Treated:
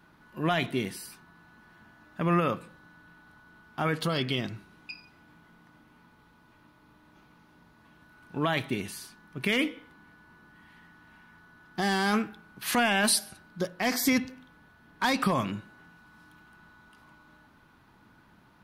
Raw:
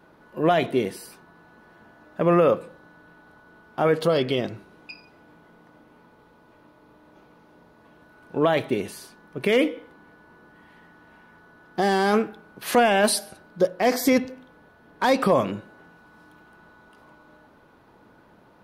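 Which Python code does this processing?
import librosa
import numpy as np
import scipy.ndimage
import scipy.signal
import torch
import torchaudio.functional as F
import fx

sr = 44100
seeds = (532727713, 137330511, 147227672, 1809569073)

y = fx.peak_eq(x, sr, hz=510.0, db=-14.0, octaves=1.3)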